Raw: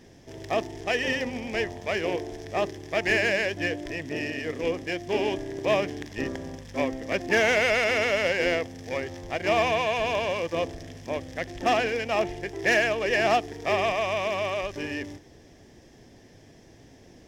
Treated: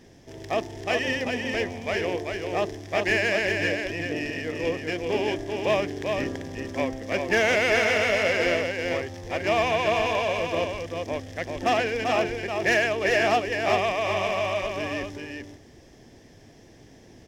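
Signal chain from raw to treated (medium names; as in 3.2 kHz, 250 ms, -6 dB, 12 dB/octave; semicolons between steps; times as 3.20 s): delay 390 ms -4.5 dB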